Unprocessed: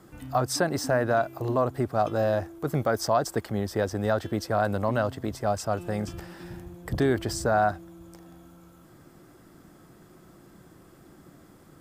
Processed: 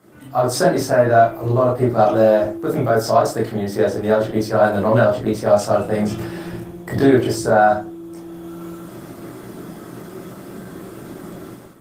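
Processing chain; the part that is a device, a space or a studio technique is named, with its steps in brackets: 7.64–8.05 s: dynamic bell 6.1 kHz, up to +4 dB, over -56 dBFS, Q 1.7; far-field microphone of a smart speaker (reverberation RT60 0.35 s, pre-delay 17 ms, DRR -5 dB; high-pass 140 Hz 12 dB/octave; level rider gain up to 14 dB; trim -1 dB; Opus 20 kbps 48 kHz)

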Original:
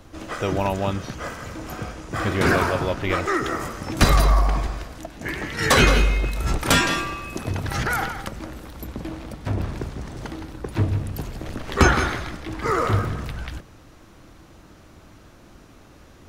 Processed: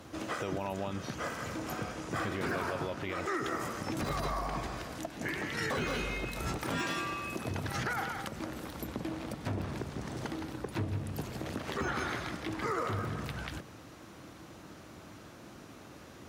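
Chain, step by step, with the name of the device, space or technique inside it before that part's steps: podcast mastering chain (high-pass 110 Hz 12 dB/octave; de-esser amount 60%; compression 2:1, threshold -36 dBFS, peak gain reduction 12 dB; peak limiter -24 dBFS, peak gain reduction 6.5 dB; MP3 112 kbps 44.1 kHz)

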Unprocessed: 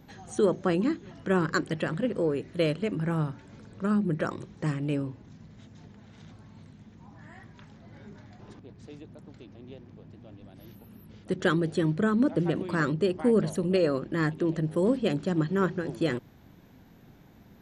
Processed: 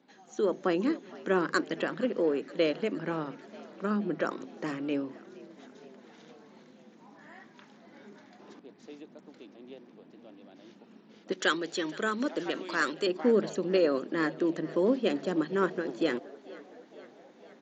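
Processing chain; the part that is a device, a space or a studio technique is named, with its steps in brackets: hum notches 50/100/150 Hz; 11.32–13.07 s: tilt EQ +3.5 dB/octave; frequency-shifting echo 469 ms, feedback 63%, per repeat +56 Hz, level -21 dB; Bluetooth headset (high-pass 230 Hz 24 dB/octave; level rider gain up to 8 dB; resampled via 16 kHz; trim -8 dB; SBC 64 kbps 16 kHz)

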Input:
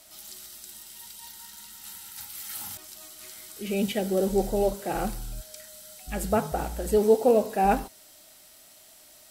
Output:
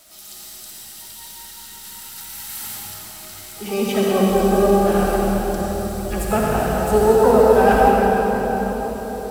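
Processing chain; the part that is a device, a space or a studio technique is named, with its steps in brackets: shimmer-style reverb (harmony voices +12 st -9 dB; reverberation RT60 5.2 s, pre-delay 54 ms, DRR -4.5 dB); trim +2.5 dB

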